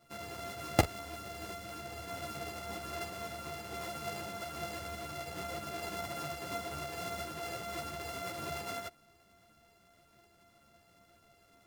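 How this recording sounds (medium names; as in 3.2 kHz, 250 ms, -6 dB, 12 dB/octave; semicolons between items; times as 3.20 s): a buzz of ramps at a fixed pitch in blocks of 64 samples; a shimmering, thickened sound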